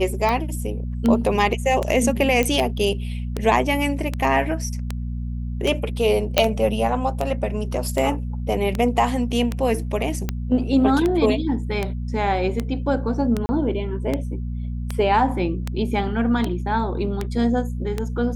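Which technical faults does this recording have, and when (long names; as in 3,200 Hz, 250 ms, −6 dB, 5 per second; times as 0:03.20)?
mains hum 60 Hz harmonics 4 −27 dBFS
scratch tick 78 rpm −10 dBFS
0:02.43: click −8 dBFS
0:06.38: click 0 dBFS
0:13.46–0:13.49: drop-out 30 ms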